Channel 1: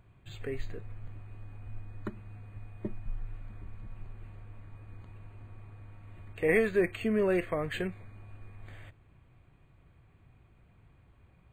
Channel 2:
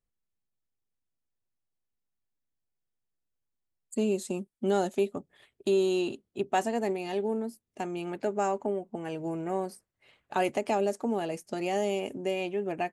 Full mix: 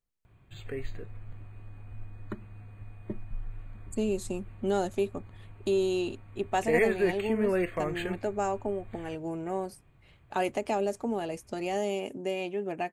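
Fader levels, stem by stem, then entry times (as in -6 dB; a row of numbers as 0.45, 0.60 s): 0.0, -1.5 dB; 0.25, 0.00 s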